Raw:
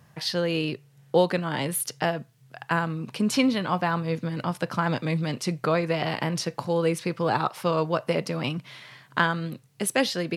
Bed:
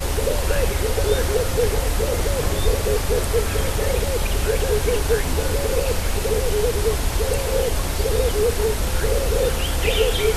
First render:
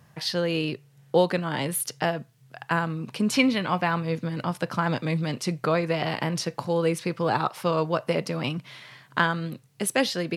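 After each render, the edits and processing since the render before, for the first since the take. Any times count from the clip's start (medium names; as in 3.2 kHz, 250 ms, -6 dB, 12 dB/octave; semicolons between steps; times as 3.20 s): 3.35–4.05 s: peaking EQ 2.3 kHz +6 dB 0.58 oct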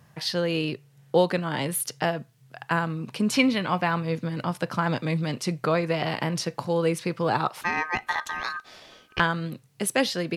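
7.61–9.20 s: ring modulator 1.4 kHz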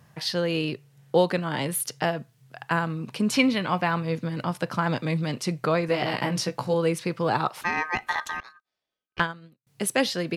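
5.87–6.74 s: doubling 16 ms -4 dB; 8.40–9.67 s: upward expansion 2.5:1, over -44 dBFS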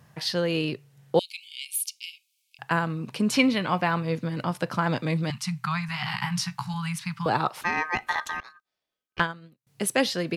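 1.19–2.59 s: Chebyshev high-pass 2.2 kHz, order 10; 5.30–7.26 s: inverse Chebyshev band-stop 280–600 Hz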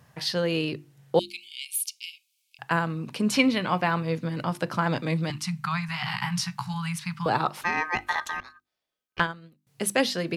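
hum notches 50/100/150/200/250/300/350 Hz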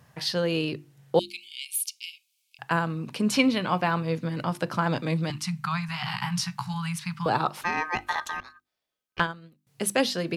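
dynamic bell 2 kHz, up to -4 dB, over -42 dBFS, Q 3.8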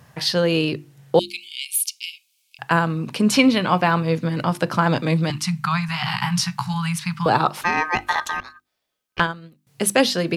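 trim +7 dB; peak limiter -3 dBFS, peak gain reduction 2 dB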